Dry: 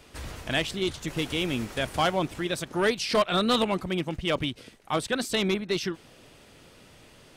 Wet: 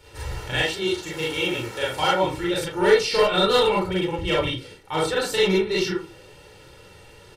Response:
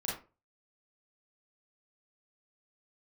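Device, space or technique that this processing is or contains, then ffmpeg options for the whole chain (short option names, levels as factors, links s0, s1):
microphone above a desk: -filter_complex "[0:a]asettb=1/sr,asplit=3[s0][s1][s2];[s0]atrim=end=0.564[s3];[s1]atrim=start=0.56:end=2.24,asetpts=PTS-STARTPTS,afade=t=in:d=0.004:c=qsin,afade=t=out:st=1.676:d=0.004:c=qsin,highpass=f=260:p=1[s4];[s2]atrim=start=2.236[s5];[s3][s4]acrossfade=d=0.004:c1=hsin:c2=qsin[s6];[s6][s5]acrossfade=d=0.004:c1=qsin:c2=hsin,aecho=1:1:2.2:0.82[s7];[1:a]atrim=start_sample=2205[s8];[s7][s8]afir=irnorm=-1:irlink=0"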